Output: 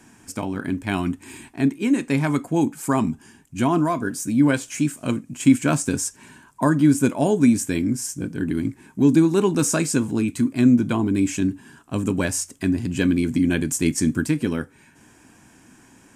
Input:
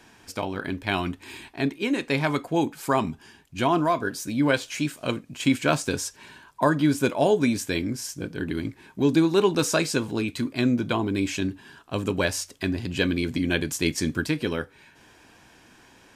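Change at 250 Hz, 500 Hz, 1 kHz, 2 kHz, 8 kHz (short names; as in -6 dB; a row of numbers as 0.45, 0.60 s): +6.5, -0.5, -1.0, -1.5, +6.0 dB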